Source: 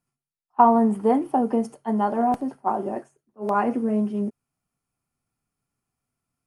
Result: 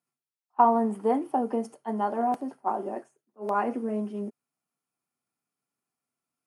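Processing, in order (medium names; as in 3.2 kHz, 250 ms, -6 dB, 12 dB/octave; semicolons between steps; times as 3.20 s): high-pass 240 Hz 12 dB/octave; trim -4 dB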